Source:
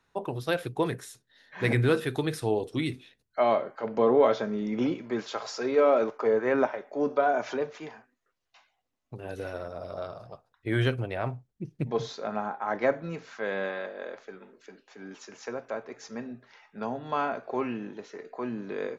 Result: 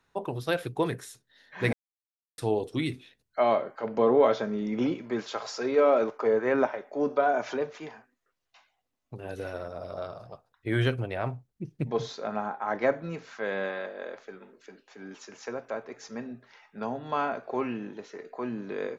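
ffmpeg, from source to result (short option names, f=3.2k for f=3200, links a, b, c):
-filter_complex "[0:a]asplit=3[a][b][c];[a]atrim=end=1.73,asetpts=PTS-STARTPTS,afade=t=out:st=1.726:d=0.004:c=hsin[d];[b]atrim=start=1.73:end=2.38,asetpts=PTS-STARTPTS,volume=0[e];[c]atrim=start=2.38,asetpts=PTS-STARTPTS,afade=t=in:d=0.004:c=hsin[f];[d][e][f]concat=n=3:v=0:a=1"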